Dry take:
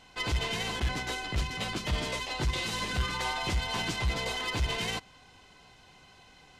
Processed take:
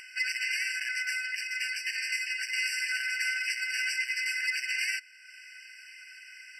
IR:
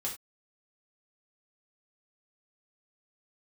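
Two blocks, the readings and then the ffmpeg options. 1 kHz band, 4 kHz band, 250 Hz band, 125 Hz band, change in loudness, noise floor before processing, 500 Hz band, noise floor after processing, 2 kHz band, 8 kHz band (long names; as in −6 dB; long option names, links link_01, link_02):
below −30 dB, −2.0 dB, below −40 dB, below −40 dB, +2.0 dB, −57 dBFS, below −40 dB, −51 dBFS, +7.0 dB, +2.5 dB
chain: -af "acompressor=mode=upward:threshold=-42dB:ratio=2.5,afftfilt=real='re*eq(mod(floor(b*sr/1024/1500),2),1)':imag='im*eq(mod(floor(b*sr/1024/1500),2),1)':win_size=1024:overlap=0.75,volume=7dB"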